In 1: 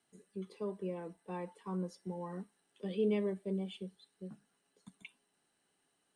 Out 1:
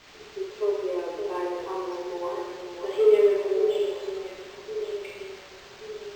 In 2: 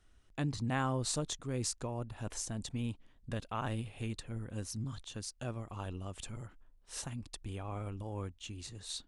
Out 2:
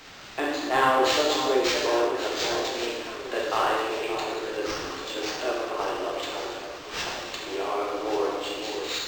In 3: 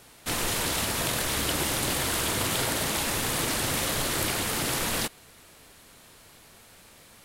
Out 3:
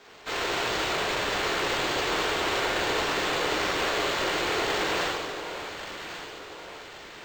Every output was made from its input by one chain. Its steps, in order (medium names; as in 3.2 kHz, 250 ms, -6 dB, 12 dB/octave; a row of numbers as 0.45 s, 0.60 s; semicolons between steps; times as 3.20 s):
steep high-pass 300 Hz 72 dB/octave; treble shelf 3.5 kHz -3 dB; band-stop 5 kHz, Q 9.2; word length cut 10-bit, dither triangular; hard clipper -29.5 dBFS; on a send: echo whose repeats swap between lows and highs 565 ms, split 1.1 kHz, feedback 66%, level -7 dB; on the sum: gated-style reverb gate 420 ms falling, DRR -5 dB; decimation joined by straight lines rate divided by 4×; normalise loudness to -27 LUFS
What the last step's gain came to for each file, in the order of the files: +6.5 dB, +11.5 dB, -0.5 dB